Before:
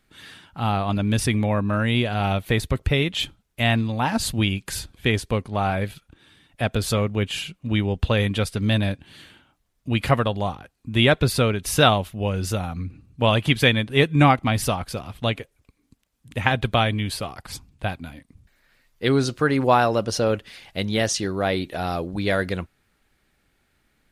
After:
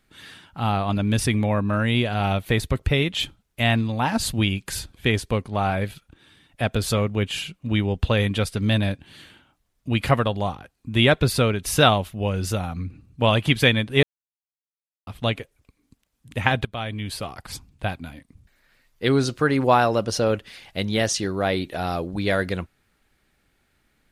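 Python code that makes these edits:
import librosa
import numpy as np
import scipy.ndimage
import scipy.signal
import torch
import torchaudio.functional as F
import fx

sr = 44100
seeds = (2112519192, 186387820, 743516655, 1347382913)

y = fx.edit(x, sr, fx.silence(start_s=14.03, length_s=1.04),
    fx.fade_in_from(start_s=16.65, length_s=0.7, floor_db=-19.0), tone=tone)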